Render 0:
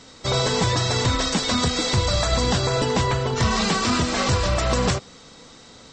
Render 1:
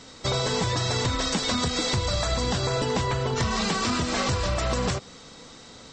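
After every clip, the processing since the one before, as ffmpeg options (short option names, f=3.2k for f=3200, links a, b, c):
-af "acompressor=threshold=-22dB:ratio=6"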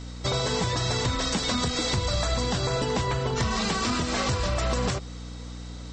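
-af "aeval=exprs='val(0)+0.0158*(sin(2*PI*60*n/s)+sin(2*PI*2*60*n/s)/2+sin(2*PI*3*60*n/s)/3+sin(2*PI*4*60*n/s)/4+sin(2*PI*5*60*n/s)/5)':c=same,volume=-1dB"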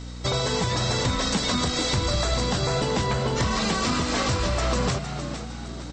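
-filter_complex "[0:a]asplit=5[a][b][c][d][e];[b]adelay=460,afreqshift=83,volume=-9.5dB[f];[c]adelay=920,afreqshift=166,volume=-17.7dB[g];[d]adelay=1380,afreqshift=249,volume=-25.9dB[h];[e]adelay=1840,afreqshift=332,volume=-34dB[i];[a][f][g][h][i]amix=inputs=5:normalize=0,volume=1.5dB"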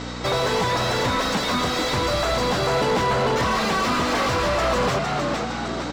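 -filter_complex "[0:a]asplit=2[a][b];[b]highpass=f=720:p=1,volume=25dB,asoftclip=type=tanh:threshold=-12dB[c];[a][c]amix=inputs=2:normalize=0,lowpass=f=1.4k:p=1,volume=-6dB"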